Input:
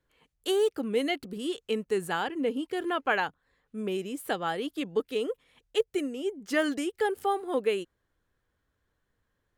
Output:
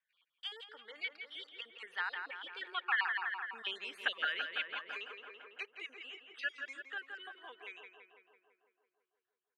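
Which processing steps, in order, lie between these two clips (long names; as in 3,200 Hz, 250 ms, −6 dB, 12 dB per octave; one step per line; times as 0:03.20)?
time-frequency cells dropped at random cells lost 42%
source passing by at 0:03.93, 21 m/s, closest 6.2 metres
on a send: feedback echo with a low-pass in the loop 167 ms, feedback 68%, low-pass 2,700 Hz, level −6.5 dB
on the sum: downward compressor 2.5 to 1, threshold −45 dBFS, peak gain reduction 12.5 dB
flat-topped band-pass 2,200 Hz, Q 0.93
level +17 dB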